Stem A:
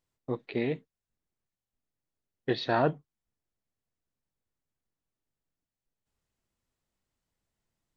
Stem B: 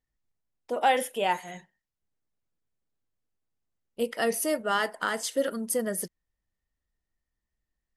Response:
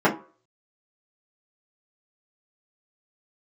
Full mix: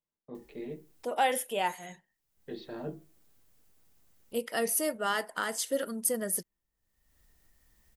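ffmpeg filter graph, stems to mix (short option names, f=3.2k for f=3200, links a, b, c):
-filter_complex "[0:a]acrossover=split=400|3000[a][b][c];[b]acompressor=threshold=-46dB:ratio=2[d];[a][d][c]amix=inputs=3:normalize=0,volume=-14.5dB,asplit=2[e][f];[f]volume=-18dB[g];[1:a]highshelf=f=8.6k:g=10,acompressor=mode=upward:threshold=-42dB:ratio=2.5,adelay=350,volume=-4dB[h];[2:a]atrim=start_sample=2205[i];[g][i]afir=irnorm=-1:irlink=0[j];[e][h][j]amix=inputs=3:normalize=0"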